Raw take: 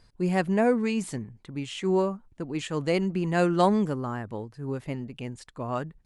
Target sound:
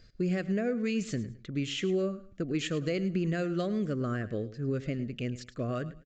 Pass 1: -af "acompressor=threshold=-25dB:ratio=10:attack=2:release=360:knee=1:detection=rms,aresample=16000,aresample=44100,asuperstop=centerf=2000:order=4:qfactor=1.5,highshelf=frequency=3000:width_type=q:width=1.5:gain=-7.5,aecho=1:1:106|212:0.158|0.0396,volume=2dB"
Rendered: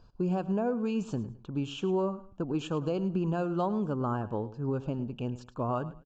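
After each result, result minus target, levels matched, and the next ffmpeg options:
8,000 Hz band −9.0 dB; 2,000 Hz band −7.5 dB
-af "acompressor=threshold=-25dB:ratio=10:attack=2:release=360:knee=1:detection=rms,aresample=16000,aresample=44100,asuperstop=centerf=2000:order=4:qfactor=1.5,aecho=1:1:106|212:0.158|0.0396,volume=2dB"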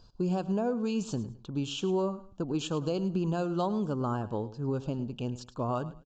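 2,000 Hz band −8.5 dB
-af "acompressor=threshold=-25dB:ratio=10:attack=2:release=360:knee=1:detection=rms,aresample=16000,aresample=44100,asuperstop=centerf=900:order=4:qfactor=1.5,aecho=1:1:106|212:0.158|0.0396,volume=2dB"

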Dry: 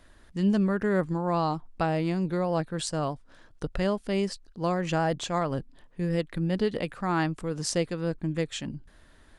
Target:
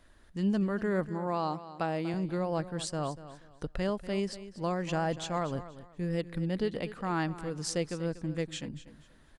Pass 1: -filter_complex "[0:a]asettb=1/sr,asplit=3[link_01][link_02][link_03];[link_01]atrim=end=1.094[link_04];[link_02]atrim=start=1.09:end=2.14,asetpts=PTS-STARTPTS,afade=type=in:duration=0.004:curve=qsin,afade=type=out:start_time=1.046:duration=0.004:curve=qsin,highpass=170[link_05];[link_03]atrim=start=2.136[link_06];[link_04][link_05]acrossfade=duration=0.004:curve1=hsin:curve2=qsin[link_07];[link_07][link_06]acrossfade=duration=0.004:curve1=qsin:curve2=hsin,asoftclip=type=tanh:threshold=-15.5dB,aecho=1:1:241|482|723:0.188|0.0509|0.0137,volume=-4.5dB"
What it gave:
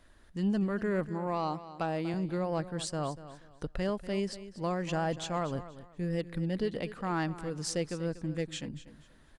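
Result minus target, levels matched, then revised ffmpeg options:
soft clipping: distortion +15 dB
-filter_complex "[0:a]asettb=1/sr,asplit=3[link_01][link_02][link_03];[link_01]atrim=end=1.094[link_04];[link_02]atrim=start=1.09:end=2.14,asetpts=PTS-STARTPTS,afade=type=in:duration=0.004:curve=qsin,afade=type=out:start_time=1.046:duration=0.004:curve=qsin,highpass=170[link_05];[link_03]atrim=start=2.136[link_06];[link_04][link_05]acrossfade=duration=0.004:curve1=hsin:curve2=qsin[link_07];[link_07][link_06]acrossfade=duration=0.004:curve1=qsin:curve2=hsin,asoftclip=type=tanh:threshold=-7dB,aecho=1:1:241|482|723:0.188|0.0509|0.0137,volume=-4.5dB"

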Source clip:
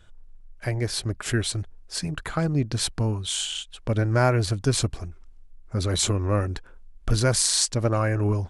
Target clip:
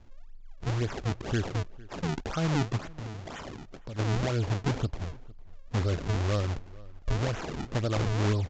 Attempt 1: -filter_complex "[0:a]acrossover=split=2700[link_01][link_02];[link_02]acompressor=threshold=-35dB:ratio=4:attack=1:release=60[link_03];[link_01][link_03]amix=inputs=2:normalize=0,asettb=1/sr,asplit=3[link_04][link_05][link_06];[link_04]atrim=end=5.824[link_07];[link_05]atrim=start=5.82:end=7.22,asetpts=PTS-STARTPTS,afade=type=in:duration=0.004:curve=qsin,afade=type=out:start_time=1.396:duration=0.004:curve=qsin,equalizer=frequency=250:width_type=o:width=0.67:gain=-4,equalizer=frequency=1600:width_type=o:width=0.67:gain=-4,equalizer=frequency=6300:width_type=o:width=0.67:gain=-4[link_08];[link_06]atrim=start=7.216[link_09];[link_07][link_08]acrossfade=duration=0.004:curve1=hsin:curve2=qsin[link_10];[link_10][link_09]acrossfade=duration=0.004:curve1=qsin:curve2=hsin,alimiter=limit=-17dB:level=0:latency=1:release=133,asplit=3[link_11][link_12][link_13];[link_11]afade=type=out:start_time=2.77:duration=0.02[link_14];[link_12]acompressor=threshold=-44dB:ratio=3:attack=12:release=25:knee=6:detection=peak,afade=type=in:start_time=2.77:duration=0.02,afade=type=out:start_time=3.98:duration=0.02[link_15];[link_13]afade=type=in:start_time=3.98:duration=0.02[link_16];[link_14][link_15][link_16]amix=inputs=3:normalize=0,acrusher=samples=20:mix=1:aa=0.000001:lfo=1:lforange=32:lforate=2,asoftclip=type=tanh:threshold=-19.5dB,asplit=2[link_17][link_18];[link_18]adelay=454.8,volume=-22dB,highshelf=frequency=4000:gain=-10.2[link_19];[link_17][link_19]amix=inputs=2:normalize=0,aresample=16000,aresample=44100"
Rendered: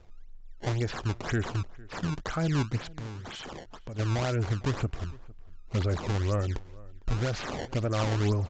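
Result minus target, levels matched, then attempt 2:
sample-and-hold swept by an LFO: distortion −5 dB
-filter_complex "[0:a]acrossover=split=2700[link_01][link_02];[link_02]acompressor=threshold=-35dB:ratio=4:attack=1:release=60[link_03];[link_01][link_03]amix=inputs=2:normalize=0,asettb=1/sr,asplit=3[link_04][link_05][link_06];[link_04]atrim=end=5.824[link_07];[link_05]atrim=start=5.82:end=7.22,asetpts=PTS-STARTPTS,afade=type=in:duration=0.004:curve=qsin,afade=type=out:start_time=1.396:duration=0.004:curve=qsin,equalizer=frequency=250:width_type=o:width=0.67:gain=-4,equalizer=frequency=1600:width_type=o:width=0.67:gain=-4,equalizer=frequency=6300:width_type=o:width=0.67:gain=-4[link_08];[link_06]atrim=start=7.216[link_09];[link_07][link_08]acrossfade=duration=0.004:curve1=hsin:curve2=qsin[link_10];[link_10][link_09]acrossfade=duration=0.004:curve1=qsin:curve2=hsin,alimiter=limit=-17dB:level=0:latency=1:release=133,asplit=3[link_11][link_12][link_13];[link_11]afade=type=out:start_time=2.77:duration=0.02[link_14];[link_12]acompressor=threshold=-44dB:ratio=3:attack=12:release=25:knee=6:detection=peak,afade=type=in:start_time=2.77:duration=0.02,afade=type=out:start_time=3.98:duration=0.02[link_15];[link_13]afade=type=in:start_time=3.98:duration=0.02[link_16];[link_14][link_15][link_16]amix=inputs=3:normalize=0,acrusher=samples=46:mix=1:aa=0.000001:lfo=1:lforange=73.6:lforate=2,asoftclip=type=tanh:threshold=-19.5dB,asplit=2[link_17][link_18];[link_18]adelay=454.8,volume=-22dB,highshelf=frequency=4000:gain=-10.2[link_19];[link_17][link_19]amix=inputs=2:normalize=0,aresample=16000,aresample=44100"

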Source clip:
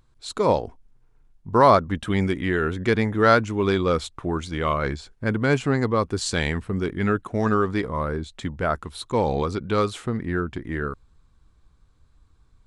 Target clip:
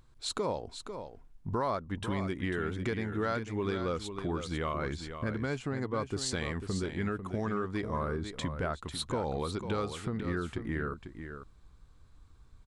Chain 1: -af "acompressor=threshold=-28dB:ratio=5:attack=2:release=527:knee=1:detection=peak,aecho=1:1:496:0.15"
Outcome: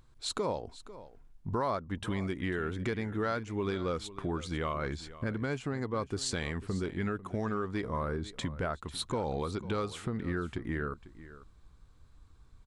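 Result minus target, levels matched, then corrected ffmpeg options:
echo-to-direct −7.5 dB
-af "acompressor=threshold=-28dB:ratio=5:attack=2:release=527:knee=1:detection=peak,aecho=1:1:496:0.355"

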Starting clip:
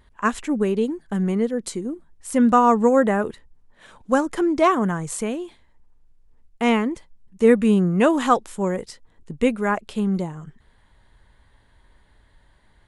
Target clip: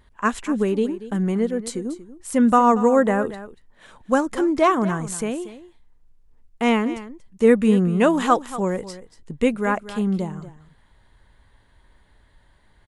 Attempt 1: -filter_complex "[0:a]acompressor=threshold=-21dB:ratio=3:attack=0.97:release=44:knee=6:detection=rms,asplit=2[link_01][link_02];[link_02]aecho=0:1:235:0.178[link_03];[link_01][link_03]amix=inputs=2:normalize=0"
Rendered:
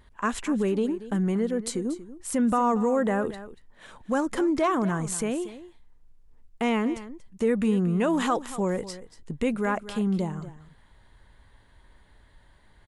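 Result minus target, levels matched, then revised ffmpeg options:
downward compressor: peak gain reduction +10 dB
-filter_complex "[0:a]asplit=2[link_01][link_02];[link_02]aecho=0:1:235:0.178[link_03];[link_01][link_03]amix=inputs=2:normalize=0"

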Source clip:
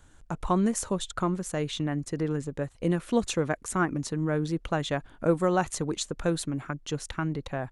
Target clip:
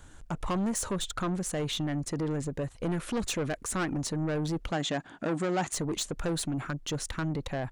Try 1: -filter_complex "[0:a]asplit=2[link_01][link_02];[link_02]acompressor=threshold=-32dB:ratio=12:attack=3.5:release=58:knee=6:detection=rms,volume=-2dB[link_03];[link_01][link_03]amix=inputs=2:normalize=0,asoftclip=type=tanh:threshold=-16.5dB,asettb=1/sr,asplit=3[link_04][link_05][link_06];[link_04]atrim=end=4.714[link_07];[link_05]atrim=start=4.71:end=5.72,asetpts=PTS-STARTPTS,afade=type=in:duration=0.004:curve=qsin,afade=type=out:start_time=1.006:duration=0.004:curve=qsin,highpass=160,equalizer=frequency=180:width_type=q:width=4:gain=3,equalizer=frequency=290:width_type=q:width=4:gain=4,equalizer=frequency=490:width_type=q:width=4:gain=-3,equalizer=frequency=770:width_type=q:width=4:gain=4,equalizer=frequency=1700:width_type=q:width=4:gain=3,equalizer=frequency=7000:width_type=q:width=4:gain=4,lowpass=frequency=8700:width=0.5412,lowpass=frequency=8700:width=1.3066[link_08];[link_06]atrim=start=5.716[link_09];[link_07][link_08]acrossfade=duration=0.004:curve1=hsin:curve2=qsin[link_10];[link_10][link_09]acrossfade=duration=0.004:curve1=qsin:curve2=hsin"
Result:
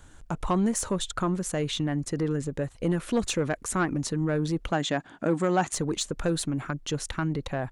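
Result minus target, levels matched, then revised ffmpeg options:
soft clipping: distortion −9 dB
-filter_complex "[0:a]asplit=2[link_01][link_02];[link_02]acompressor=threshold=-32dB:ratio=12:attack=3.5:release=58:knee=6:detection=rms,volume=-2dB[link_03];[link_01][link_03]amix=inputs=2:normalize=0,asoftclip=type=tanh:threshold=-26dB,asettb=1/sr,asplit=3[link_04][link_05][link_06];[link_04]atrim=end=4.714[link_07];[link_05]atrim=start=4.71:end=5.72,asetpts=PTS-STARTPTS,afade=type=in:duration=0.004:curve=qsin,afade=type=out:start_time=1.006:duration=0.004:curve=qsin,highpass=160,equalizer=frequency=180:width_type=q:width=4:gain=3,equalizer=frequency=290:width_type=q:width=4:gain=4,equalizer=frequency=490:width_type=q:width=4:gain=-3,equalizer=frequency=770:width_type=q:width=4:gain=4,equalizer=frequency=1700:width_type=q:width=4:gain=3,equalizer=frequency=7000:width_type=q:width=4:gain=4,lowpass=frequency=8700:width=0.5412,lowpass=frequency=8700:width=1.3066[link_08];[link_06]atrim=start=5.716[link_09];[link_07][link_08]acrossfade=duration=0.004:curve1=hsin:curve2=qsin[link_10];[link_10][link_09]acrossfade=duration=0.004:curve1=qsin:curve2=hsin"

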